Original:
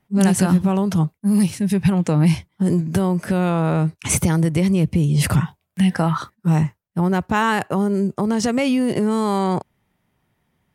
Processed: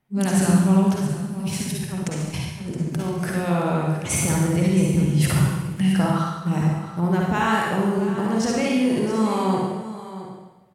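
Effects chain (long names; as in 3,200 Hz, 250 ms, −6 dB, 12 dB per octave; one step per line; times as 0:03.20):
0:00.94–0:03.35: compressor whose output falls as the input rises −22 dBFS, ratio −0.5
single-tap delay 670 ms −13.5 dB
convolution reverb RT60 1.1 s, pre-delay 46 ms, DRR −2.5 dB
level −6 dB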